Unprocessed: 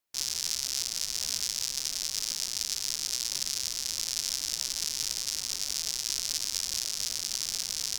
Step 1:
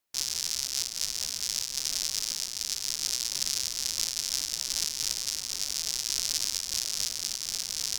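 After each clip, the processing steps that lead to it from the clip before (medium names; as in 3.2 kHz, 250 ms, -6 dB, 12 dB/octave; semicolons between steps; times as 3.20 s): random flutter of the level, depth 60%; trim +4 dB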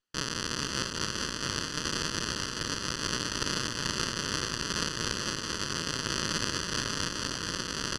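comb filter that takes the minimum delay 0.66 ms; low-pass 5.7 kHz 12 dB/octave; on a send: delay 434 ms -6 dB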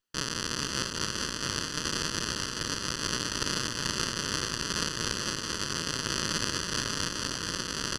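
treble shelf 9.5 kHz +6 dB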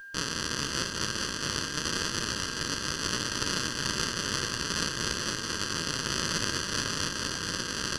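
upward compressor, threshold -50 dBFS; flange 0.91 Hz, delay 8.1 ms, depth 6.9 ms, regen -55%; whistle 1.6 kHz -47 dBFS; trim +4.5 dB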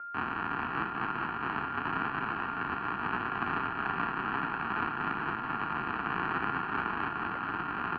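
mistuned SSB -200 Hz 400–2300 Hz; trim +4 dB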